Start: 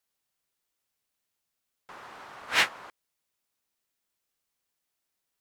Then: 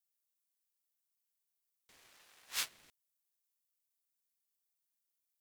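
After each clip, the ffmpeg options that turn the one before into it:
ffmpeg -i in.wav -af "aeval=exprs='max(val(0),0)':channel_layout=same,aderivative,aeval=exprs='val(0)*sin(2*PI*760*n/s+760*0.5/0.64*sin(2*PI*0.64*n/s))':channel_layout=same,volume=1dB" out.wav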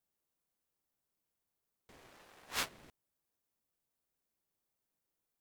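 ffmpeg -i in.wav -af "tiltshelf=frequency=1400:gain=8.5,volume=5.5dB" out.wav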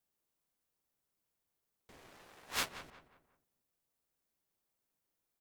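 ffmpeg -i in.wav -filter_complex "[0:a]asplit=2[link_01][link_02];[link_02]adelay=180,lowpass=frequency=2200:poles=1,volume=-11dB,asplit=2[link_03][link_04];[link_04]adelay=180,lowpass=frequency=2200:poles=1,volume=0.4,asplit=2[link_05][link_06];[link_06]adelay=180,lowpass=frequency=2200:poles=1,volume=0.4,asplit=2[link_07][link_08];[link_08]adelay=180,lowpass=frequency=2200:poles=1,volume=0.4[link_09];[link_01][link_03][link_05][link_07][link_09]amix=inputs=5:normalize=0,volume=1dB" out.wav

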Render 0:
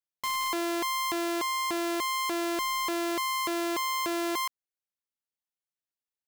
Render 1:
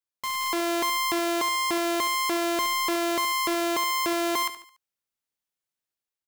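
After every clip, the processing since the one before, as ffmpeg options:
ffmpeg -i in.wav -af "dynaudnorm=framelen=130:gausssize=7:maxgain=4.5dB,aecho=1:1:72|144|216|288:0.251|0.105|0.0443|0.0186" out.wav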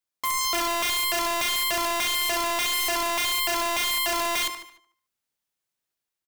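ffmpeg -i in.wav -filter_complex "[0:a]aeval=exprs='(mod(17.8*val(0)+1,2)-1)/17.8':channel_layout=same,asplit=2[link_01][link_02];[link_02]adelay=150,lowpass=frequency=4600:poles=1,volume=-15.5dB,asplit=2[link_03][link_04];[link_04]adelay=150,lowpass=frequency=4600:poles=1,volume=0.23[link_05];[link_01][link_03][link_05]amix=inputs=3:normalize=0,volume=4dB" out.wav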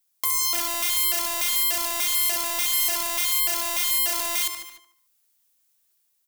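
ffmpeg -i in.wav -af "acompressor=threshold=-40dB:ratio=2.5,crystalizer=i=3:c=0,volume=3dB" out.wav

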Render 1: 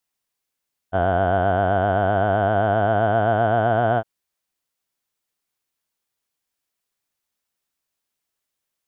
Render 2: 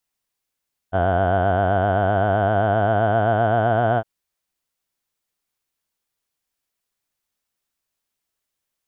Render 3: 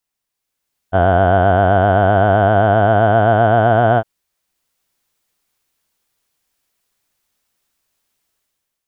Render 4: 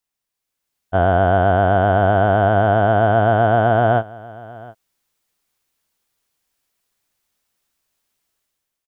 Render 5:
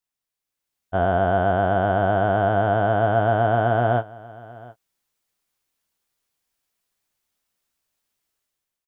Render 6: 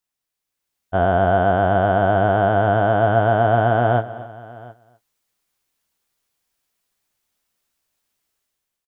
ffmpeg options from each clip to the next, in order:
ffmpeg -i in.wav -af "lowshelf=frequency=71:gain=6" out.wav
ffmpeg -i in.wav -af "dynaudnorm=framelen=160:gausssize=7:maxgain=10dB" out.wav
ffmpeg -i in.wav -af "aecho=1:1:716:0.0891,volume=-2.5dB" out.wav
ffmpeg -i in.wav -filter_complex "[0:a]asplit=2[link_01][link_02];[link_02]adelay=16,volume=-11dB[link_03];[link_01][link_03]amix=inputs=2:normalize=0,volume=-5dB" out.wav
ffmpeg -i in.wav -af "aecho=1:1:251:0.141,volume=3dB" out.wav

